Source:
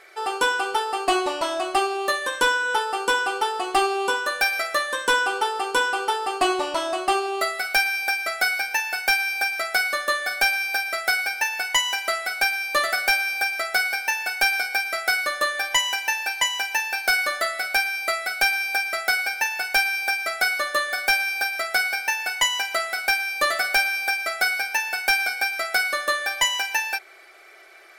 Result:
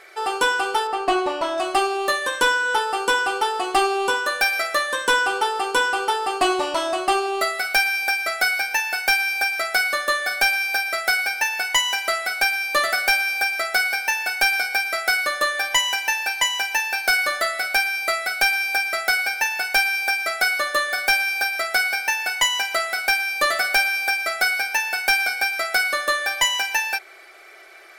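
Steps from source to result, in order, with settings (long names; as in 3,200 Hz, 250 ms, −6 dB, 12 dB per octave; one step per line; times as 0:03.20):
0:00.87–0:01.58: high-shelf EQ 4,100 Hz −12 dB
in parallel at −7.5 dB: soft clipping −23 dBFS, distortion −9 dB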